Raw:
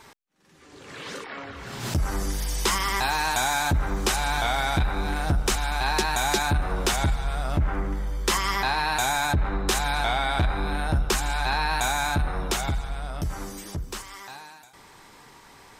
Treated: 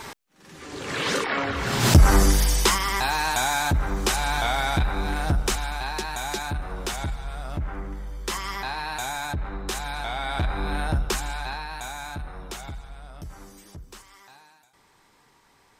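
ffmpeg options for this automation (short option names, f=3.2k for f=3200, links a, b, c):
-af "volume=18dB,afade=t=out:st=2.15:d=0.64:silence=0.281838,afade=t=out:st=5.37:d=0.53:silence=0.473151,afade=t=in:st=10.09:d=0.7:silence=0.473151,afade=t=out:st=10.79:d=0.87:silence=0.298538"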